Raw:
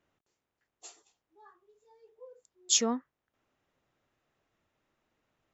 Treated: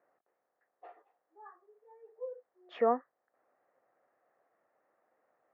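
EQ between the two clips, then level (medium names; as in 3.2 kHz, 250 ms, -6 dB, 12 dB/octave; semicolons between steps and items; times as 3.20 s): distance through air 160 m; cabinet simulation 440–2100 Hz, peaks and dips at 520 Hz +9 dB, 730 Hz +10 dB, 1.2 kHz +5 dB, 1.8 kHz +7 dB; tilt EQ -2 dB/octave; 0.0 dB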